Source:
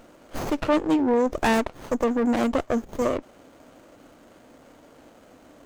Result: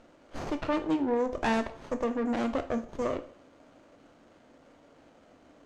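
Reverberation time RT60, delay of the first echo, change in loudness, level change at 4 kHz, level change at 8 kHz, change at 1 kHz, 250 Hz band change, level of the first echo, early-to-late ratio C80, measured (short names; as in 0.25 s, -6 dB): 0.50 s, none, -7.0 dB, -7.0 dB, -11.0 dB, -6.0 dB, -7.0 dB, none, 18.0 dB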